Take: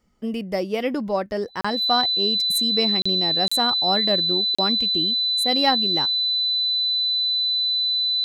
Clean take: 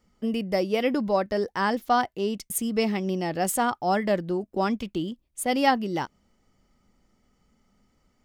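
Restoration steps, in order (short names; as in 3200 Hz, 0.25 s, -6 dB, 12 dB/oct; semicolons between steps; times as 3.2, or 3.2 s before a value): notch 4000 Hz, Q 30; interpolate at 1.61/3.02/3.48/4.55, 35 ms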